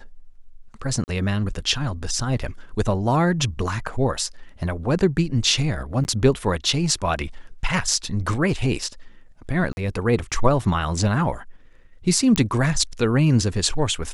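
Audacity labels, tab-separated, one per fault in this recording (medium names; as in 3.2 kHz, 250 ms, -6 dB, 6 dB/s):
1.040000	1.080000	dropout 39 ms
6.040000	6.050000	dropout 9.8 ms
9.730000	9.770000	dropout 41 ms
12.360000	12.360000	pop -5 dBFS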